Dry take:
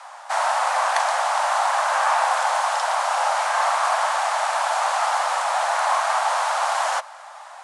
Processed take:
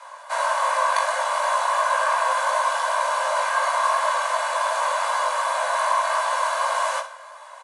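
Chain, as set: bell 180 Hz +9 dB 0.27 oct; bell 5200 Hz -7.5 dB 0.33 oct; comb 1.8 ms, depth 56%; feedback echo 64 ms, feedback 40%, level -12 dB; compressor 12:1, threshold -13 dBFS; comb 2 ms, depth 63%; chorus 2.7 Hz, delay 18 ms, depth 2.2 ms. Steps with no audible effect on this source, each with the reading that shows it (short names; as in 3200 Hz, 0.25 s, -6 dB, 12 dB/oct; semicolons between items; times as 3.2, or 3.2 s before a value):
bell 180 Hz: input band starts at 480 Hz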